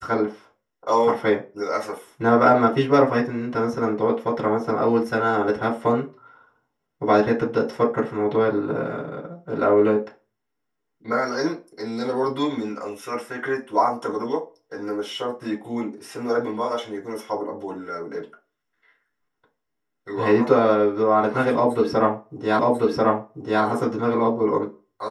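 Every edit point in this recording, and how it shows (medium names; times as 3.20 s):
22.59 s: repeat of the last 1.04 s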